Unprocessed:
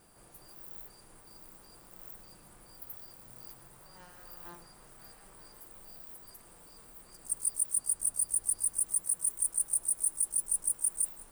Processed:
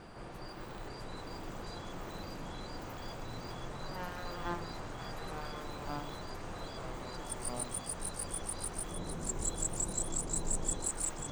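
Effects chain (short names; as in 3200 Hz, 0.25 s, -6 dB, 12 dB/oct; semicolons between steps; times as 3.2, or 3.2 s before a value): 8.91–10.86 tilt shelf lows +8.5 dB; echoes that change speed 0.59 s, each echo -3 st, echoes 2; air absorption 170 m; gain +13.5 dB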